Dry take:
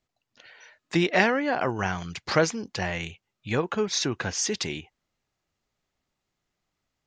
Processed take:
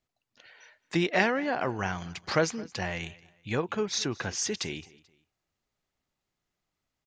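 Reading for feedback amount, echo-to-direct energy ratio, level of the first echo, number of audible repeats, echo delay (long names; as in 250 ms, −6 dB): 34%, −21.5 dB, −22.0 dB, 2, 218 ms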